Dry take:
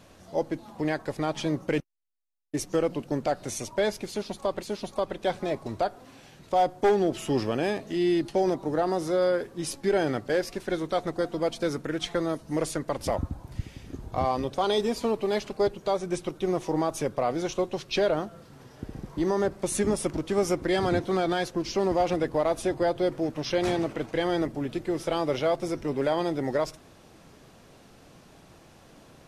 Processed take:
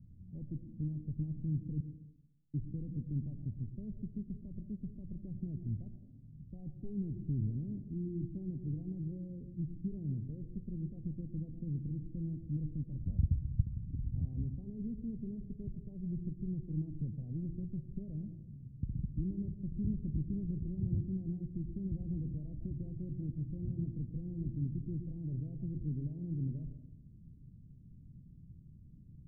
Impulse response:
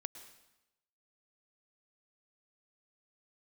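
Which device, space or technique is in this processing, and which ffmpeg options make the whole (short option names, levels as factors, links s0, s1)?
club heard from the street: -filter_complex "[0:a]alimiter=limit=0.0944:level=0:latency=1:release=27,lowpass=f=170:w=0.5412,lowpass=f=170:w=1.3066[s0];[1:a]atrim=start_sample=2205[s1];[s0][s1]afir=irnorm=-1:irlink=0,volume=2.37"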